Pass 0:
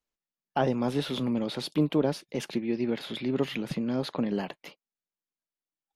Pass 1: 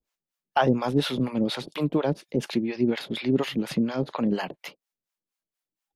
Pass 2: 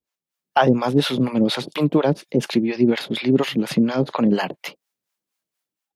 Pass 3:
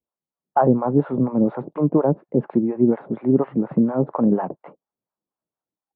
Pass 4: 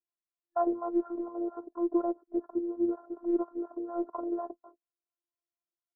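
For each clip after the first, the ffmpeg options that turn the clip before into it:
ffmpeg -i in.wav -filter_complex "[0:a]acrossover=split=570[link_01][link_02];[link_01]aeval=exprs='val(0)*(1-1/2+1/2*cos(2*PI*4.2*n/s))':channel_layout=same[link_03];[link_02]aeval=exprs='val(0)*(1-1/2-1/2*cos(2*PI*4.2*n/s))':channel_layout=same[link_04];[link_03][link_04]amix=inputs=2:normalize=0,volume=8.5dB" out.wav
ffmpeg -i in.wav -af "highpass=85,dynaudnorm=framelen=100:gausssize=7:maxgain=9dB,volume=-1.5dB" out.wav
ffmpeg -i in.wav -af "lowpass=frequency=1100:width=0.5412,lowpass=frequency=1100:width=1.3066" out.wav
ffmpeg -i in.wav -af "afftfilt=real='re*between(b*sr/4096,250,1600)':imag='im*between(b*sr/4096,250,1600)':win_size=4096:overlap=0.75,afftfilt=real='hypot(re,im)*cos(PI*b)':imag='0':win_size=512:overlap=0.75,volume=-7.5dB" out.wav

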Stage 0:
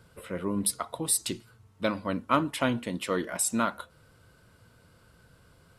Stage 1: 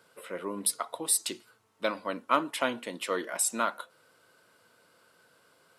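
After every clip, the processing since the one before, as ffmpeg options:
ffmpeg -i in.wav -af "highpass=380" out.wav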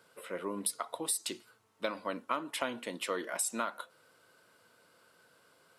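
ffmpeg -i in.wav -af "acompressor=threshold=-28dB:ratio=6,volume=-1.5dB" out.wav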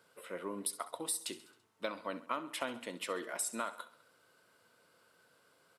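ffmpeg -i in.wav -af "aecho=1:1:67|134|201|268|335:0.158|0.0888|0.0497|0.0278|0.0156,volume=-3.5dB" out.wav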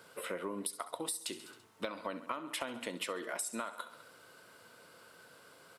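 ffmpeg -i in.wav -af "acompressor=threshold=-46dB:ratio=6,volume=10dB" out.wav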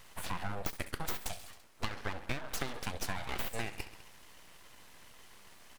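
ffmpeg -i in.wav -af "aeval=exprs='abs(val(0))':channel_layout=same,volume=4dB" out.wav

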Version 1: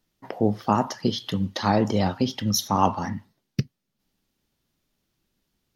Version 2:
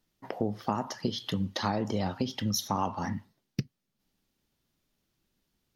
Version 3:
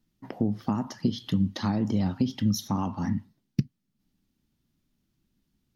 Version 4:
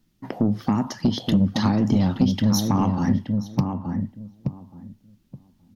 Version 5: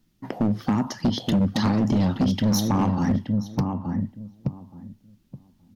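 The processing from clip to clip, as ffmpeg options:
ffmpeg -i in.wav -af "acompressor=threshold=-23dB:ratio=6,volume=-2.5dB" out.wav
ffmpeg -i in.wav -af "lowshelf=frequency=350:width_type=q:width=1.5:gain=8,volume=-3dB" out.wav
ffmpeg -i in.wav -filter_complex "[0:a]asoftclip=type=tanh:threshold=-19dB,asplit=2[link_01][link_02];[link_02]adelay=874,lowpass=frequency=820:poles=1,volume=-4dB,asplit=2[link_03][link_04];[link_04]adelay=874,lowpass=frequency=820:poles=1,volume=0.19,asplit=2[link_05][link_06];[link_06]adelay=874,lowpass=frequency=820:poles=1,volume=0.19[link_07];[link_03][link_05][link_07]amix=inputs=3:normalize=0[link_08];[link_01][link_08]amix=inputs=2:normalize=0,volume=7.5dB" out.wav
ffmpeg -i in.wav -af "asoftclip=type=hard:threshold=-16.5dB" out.wav

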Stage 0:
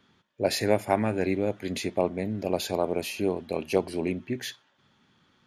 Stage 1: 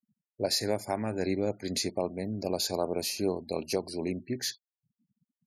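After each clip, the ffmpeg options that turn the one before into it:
ffmpeg -i in.wav -af "highshelf=frequency=3800:width_type=q:width=3:gain=6,alimiter=limit=-14dB:level=0:latency=1:release=410,afftfilt=real='re*gte(hypot(re,im),0.00447)':imag='im*gte(hypot(re,im),0.00447)':win_size=1024:overlap=0.75,volume=-2.5dB" out.wav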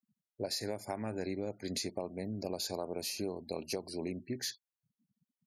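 ffmpeg -i in.wav -af "acompressor=threshold=-29dB:ratio=6,volume=-3.5dB" out.wav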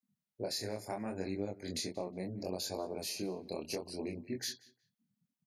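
ffmpeg -i in.wav -filter_complex "[0:a]flanger=delay=20:depth=7.9:speed=0.72,asplit=2[link_01][link_02];[link_02]adelay=182,lowpass=frequency=3800:poles=1,volume=-20dB,asplit=2[link_03][link_04];[link_04]adelay=182,lowpass=frequency=3800:poles=1,volume=0.22[link_05];[link_01][link_03][link_05]amix=inputs=3:normalize=0,volume=2dB" out.wav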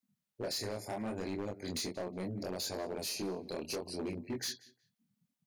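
ffmpeg -i in.wav -af "asoftclip=type=hard:threshold=-35.5dB,volume=2.5dB" out.wav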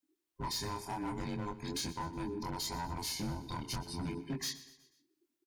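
ffmpeg -i in.wav -af "afftfilt=real='real(if(between(b,1,1008),(2*floor((b-1)/24)+1)*24-b,b),0)':imag='imag(if(between(b,1,1008),(2*floor((b-1)/24)+1)*24-b,b),0)*if(between(b,1,1008),-1,1)':win_size=2048:overlap=0.75,aecho=1:1:122|244|366|488:0.141|0.0692|0.0339|0.0166" out.wav

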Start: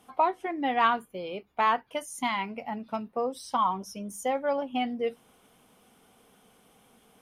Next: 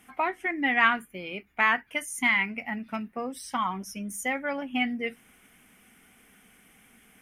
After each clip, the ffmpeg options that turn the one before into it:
ffmpeg -i in.wav -af "equalizer=frequency=125:width_type=o:width=1:gain=-6,equalizer=frequency=500:width_type=o:width=1:gain=-11,equalizer=frequency=1000:width_type=o:width=1:gain=-10,equalizer=frequency=2000:width_type=o:width=1:gain=11,equalizer=frequency=4000:width_type=o:width=1:gain=-11,volume=6dB" out.wav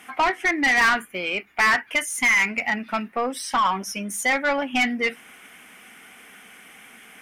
ffmpeg -i in.wav -filter_complex "[0:a]asplit=2[link_01][link_02];[link_02]highpass=frequency=720:poles=1,volume=24dB,asoftclip=type=tanh:threshold=-7dB[link_03];[link_01][link_03]amix=inputs=2:normalize=0,lowpass=frequency=4500:poles=1,volume=-6dB,volume=-3.5dB" out.wav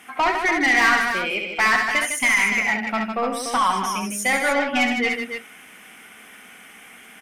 ffmpeg -i in.wav -af "aecho=1:1:68|155|292:0.501|0.447|0.422" out.wav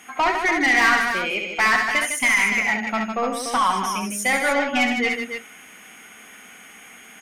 ffmpeg -i in.wav -af "aeval=exprs='val(0)+0.00251*sin(2*PI*6600*n/s)':channel_layout=same" out.wav

